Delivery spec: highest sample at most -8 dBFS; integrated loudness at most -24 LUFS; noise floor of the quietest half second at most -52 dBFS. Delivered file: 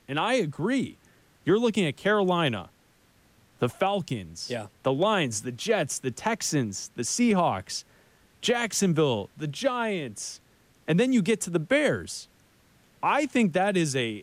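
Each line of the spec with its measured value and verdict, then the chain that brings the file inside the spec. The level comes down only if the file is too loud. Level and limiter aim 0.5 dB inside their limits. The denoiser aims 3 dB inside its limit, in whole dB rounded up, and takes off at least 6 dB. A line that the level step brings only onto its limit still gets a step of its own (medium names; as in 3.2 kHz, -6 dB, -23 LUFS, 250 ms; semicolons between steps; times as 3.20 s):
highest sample -13.0 dBFS: pass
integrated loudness -26.5 LUFS: pass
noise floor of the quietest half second -62 dBFS: pass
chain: none needed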